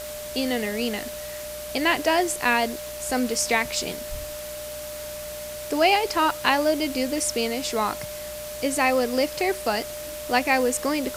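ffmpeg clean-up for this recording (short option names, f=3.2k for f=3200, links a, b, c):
-af "adeclick=t=4,bandreject=f=60.6:t=h:w=4,bandreject=f=121.2:t=h:w=4,bandreject=f=181.8:t=h:w=4,bandreject=f=242.4:t=h:w=4,bandreject=f=600:w=30,afwtdn=0.013"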